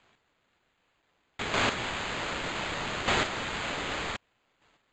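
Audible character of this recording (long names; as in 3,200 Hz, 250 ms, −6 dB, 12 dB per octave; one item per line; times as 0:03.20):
a quantiser's noise floor 12 bits, dither triangular
chopped level 0.65 Hz, depth 60%, duty 10%
aliases and images of a low sample rate 5,600 Hz, jitter 0%
AAC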